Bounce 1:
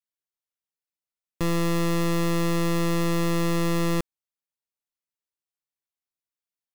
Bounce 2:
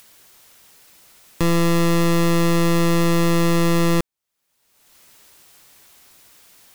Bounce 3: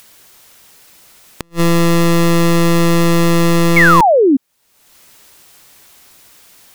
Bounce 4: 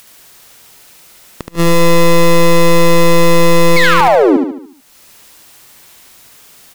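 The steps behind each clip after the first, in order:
upward compressor, threshold -30 dBFS; gain +6.5 dB
flipped gate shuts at -16 dBFS, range -41 dB; painted sound fall, 3.76–4.37, 250–2300 Hz -15 dBFS; gain +5.5 dB
overloaded stage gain 9.5 dB; on a send: feedback echo 73 ms, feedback 47%, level -4 dB; on the sum: gain +1.5 dB

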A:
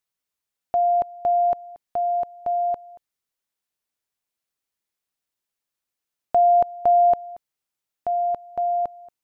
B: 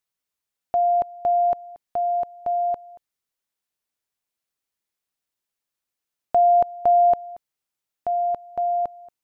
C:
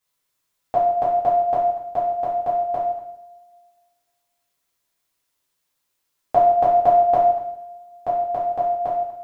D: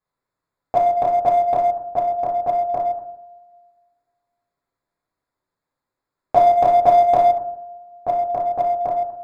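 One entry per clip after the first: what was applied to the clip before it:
nothing audible
two-slope reverb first 0.71 s, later 2 s, from -24 dB, DRR -10 dB
Wiener smoothing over 15 samples; gain +2.5 dB

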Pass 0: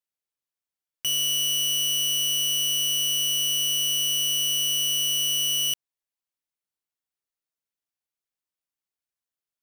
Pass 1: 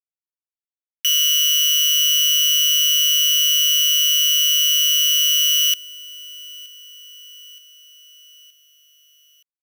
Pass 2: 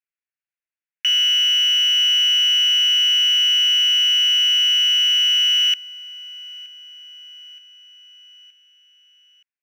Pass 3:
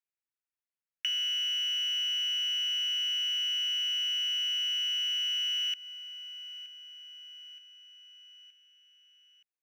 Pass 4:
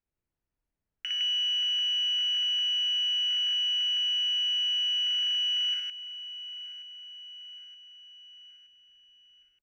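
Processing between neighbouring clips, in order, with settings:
bit-crush 5-bit; steep high-pass 1300 Hz 96 dB/oct; feedback echo 0.922 s, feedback 56%, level -23 dB; gain +8 dB
running mean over 4 samples; band shelf 2000 Hz +15.5 dB 1.2 oct; gain -7 dB
compressor, threshold -22 dBFS, peak gain reduction 7 dB; gain -7.5 dB
tilt -5 dB/oct; notch 3600 Hz, Q 13; loudspeakers at several distances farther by 20 m -2 dB, 55 m -2 dB; gain +3.5 dB

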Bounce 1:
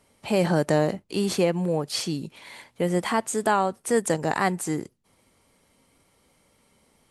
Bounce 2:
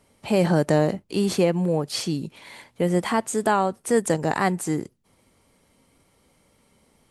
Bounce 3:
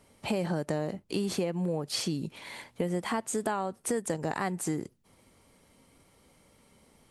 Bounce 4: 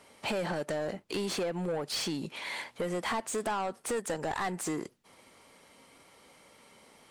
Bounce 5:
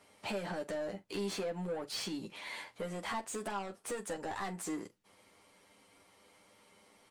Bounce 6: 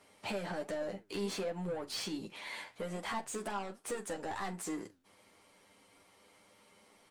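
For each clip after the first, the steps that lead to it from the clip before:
low shelf 490 Hz +3.5 dB
compressor 5:1, threshold -28 dBFS, peak gain reduction 13 dB
overdrive pedal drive 21 dB, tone 4700 Hz, clips at -17 dBFS; gain -6.5 dB
early reflections 10 ms -3.5 dB, 45 ms -15.5 dB; gain -7.5 dB
flange 1.3 Hz, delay 2.2 ms, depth 9.8 ms, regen +85%; gain +4.5 dB

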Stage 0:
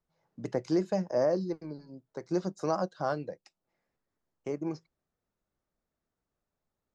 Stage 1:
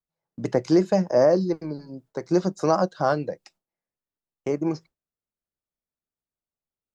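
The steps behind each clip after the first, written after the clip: gate with hold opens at -54 dBFS; gain +9 dB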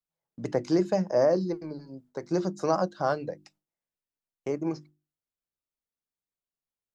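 notches 50/100/150/200/250/300/350 Hz; gain -4.5 dB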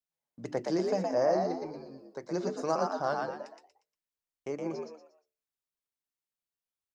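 low shelf 380 Hz -5 dB; on a send: frequency-shifting echo 0.118 s, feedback 33%, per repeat +74 Hz, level -3.5 dB; on the sum: gain -3.5 dB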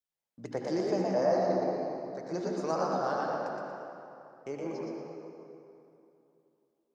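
reverb RT60 2.9 s, pre-delay 63 ms, DRR 0 dB; gain -2.5 dB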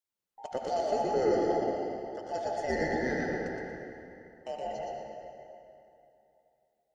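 band inversion scrambler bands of 1000 Hz

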